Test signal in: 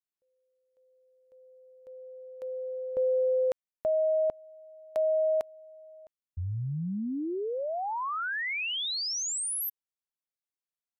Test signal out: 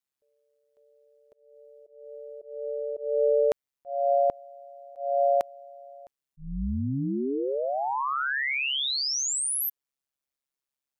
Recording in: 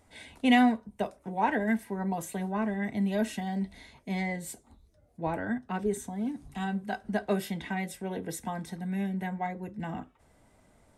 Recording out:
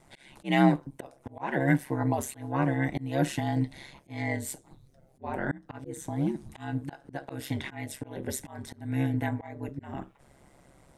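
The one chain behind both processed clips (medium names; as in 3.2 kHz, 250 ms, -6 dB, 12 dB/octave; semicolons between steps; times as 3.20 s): ring modulator 68 Hz; slow attack 272 ms; trim +7 dB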